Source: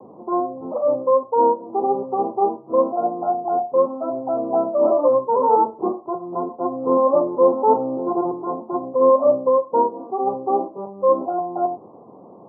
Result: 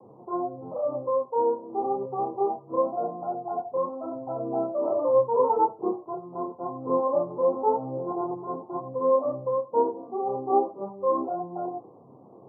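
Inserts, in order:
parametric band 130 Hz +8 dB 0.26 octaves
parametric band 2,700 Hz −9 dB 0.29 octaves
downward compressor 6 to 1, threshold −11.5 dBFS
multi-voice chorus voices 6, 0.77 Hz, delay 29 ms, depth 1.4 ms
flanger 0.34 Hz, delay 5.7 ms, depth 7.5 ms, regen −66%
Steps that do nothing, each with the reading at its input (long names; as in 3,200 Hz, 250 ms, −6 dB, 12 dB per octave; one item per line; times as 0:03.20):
parametric band 2,700 Hz: nothing at its input above 1,200 Hz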